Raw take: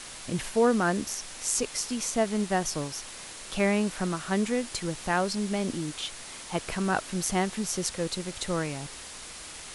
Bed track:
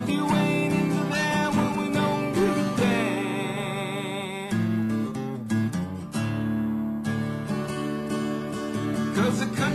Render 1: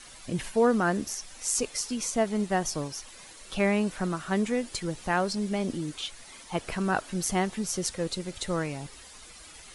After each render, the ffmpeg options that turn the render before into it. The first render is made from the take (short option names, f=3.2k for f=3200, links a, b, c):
-af "afftdn=nr=10:nf=-43"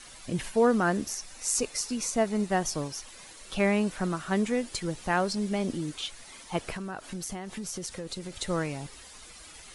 -filter_complex "[0:a]asettb=1/sr,asplit=3[a][b][c];[a]atrim=end=1.114[d];[b]atrim=start=1.11:end=2.5,asetpts=PTS-STARTPTS,afade=t=in:d=0.004:c=qsin,afade=t=out:st=1.386:d=0.004:c=qsin,bandreject=f=3.2k:w=12[e];[c]atrim=start=2.496[f];[d][e]acrossfade=d=0.004:c1=hsin:c2=qsin[g];[g][f]acrossfade=d=0.004:c1=qsin:c2=hsin,asettb=1/sr,asplit=3[h][i][j];[h]atrim=end=6.714[k];[i]atrim=start=6.71:end=8.38,asetpts=PTS-STARTPTS,afade=t=in:d=0.004:c=qsin,afade=t=out:st=1.666:d=0.004:c=qsin,acompressor=threshold=-32dB:ratio=10:attack=3.2:release=140:knee=1:detection=peak[l];[j]atrim=start=8.376[m];[k][l]acrossfade=d=0.004:c1=hsin:c2=qsin[n];[n][m]acrossfade=d=0.004:c1=qsin:c2=hsin"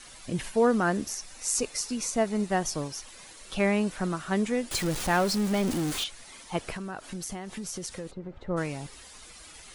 -filter_complex "[0:a]asettb=1/sr,asplit=3[a][b][c];[a]atrim=end=4.714[d];[b]atrim=start=4.71:end=6.04,asetpts=PTS-STARTPTS,afade=t=in:d=0.004:c=qsin,afade=t=out:st=1.326:d=0.004:c=qsin,aeval=exprs='val(0)+0.5*0.0355*sgn(val(0))':c=same[e];[c]atrim=start=6.036[f];[d][e]acrossfade=d=0.004:c1=hsin:c2=qsin[g];[g][f]acrossfade=d=0.004:c1=qsin:c2=hsin,asplit=3[h][i][j];[h]afade=t=out:st=8.1:d=0.02[k];[i]lowpass=1.1k,afade=t=in:st=8.1:d=0.02,afade=t=out:st=8.56:d=0.02[l];[j]afade=t=in:st=8.56:d=0.02[m];[k][l][m]amix=inputs=3:normalize=0"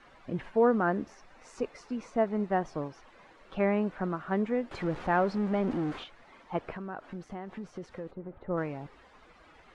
-af "lowpass=1.5k,lowshelf=f=150:g=-8.5"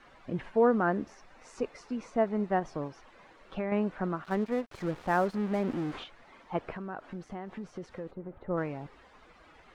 -filter_complex "[0:a]asettb=1/sr,asplit=3[a][b][c];[a]atrim=end=2.594[d];[b]atrim=start=2.59:end=3.72,asetpts=PTS-STARTPTS,afade=t=in:d=0.004:c=qsin,afade=t=out:st=1.126:d=0.004:c=qsin,acompressor=threshold=-28dB:ratio=6:attack=3.2:release=140:knee=1:detection=peak[e];[c]atrim=start=3.716[f];[d][e]acrossfade=d=0.004:c1=hsin:c2=qsin[g];[g][f]acrossfade=d=0.004:c1=qsin:c2=hsin,asettb=1/sr,asplit=3[h][i][j];[h]atrim=end=4.244[k];[i]atrim=start=4.24:end=5.93,asetpts=PTS-STARTPTS,afade=t=in:d=0.004:c=qsin,afade=t=out:st=1.686:d=0.004:c=qsin,aeval=exprs='sgn(val(0))*max(abs(val(0))-0.00708,0)':c=same[l];[j]atrim=start=5.926[m];[k][l]acrossfade=d=0.004:c1=hsin:c2=qsin[n];[n][m]acrossfade=d=0.004:c1=qsin:c2=hsin"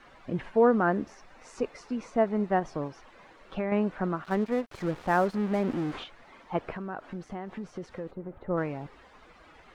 -af "volume=2.5dB"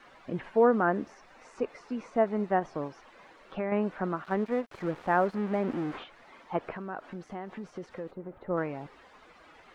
-filter_complex "[0:a]lowshelf=f=130:g=-10,acrossover=split=2800[a][b];[b]acompressor=threshold=-59dB:ratio=4:attack=1:release=60[c];[a][c]amix=inputs=2:normalize=0"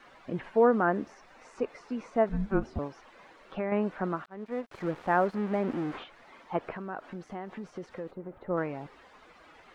-filter_complex "[0:a]asettb=1/sr,asplit=3[a][b][c];[a]atrim=end=2.294[d];[b]atrim=start=2.29:end=2.79,asetpts=PTS-STARTPTS,afade=t=in:d=0.004:c=qsin,afade=t=out:st=0.496:d=0.004:c=qsin,afreqshift=-390[e];[c]atrim=start=2.786[f];[d][e]acrossfade=d=0.004:c1=hsin:c2=qsin[g];[g][f]acrossfade=d=0.004:c1=qsin:c2=hsin,asplit=2[h][i];[h]atrim=end=4.26,asetpts=PTS-STARTPTS,afade=t=out:st=4.256:d=0.004:c=hsin[j];[i]atrim=start=4.26,asetpts=PTS-STARTPTS,afade=t=in:d=0.51[k];[j][k]concat=n=2:v=0:a=1"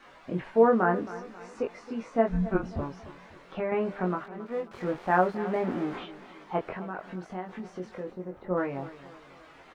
-filter_complex "[0:a]asplit=2[a][b];[b]adelay=22,volume=-3dB[c];[a][c]amix=inputs=2:normalize=0,aecho=1:1:270|540|810|1080:0.158|0.0682|0.0293|0.0126"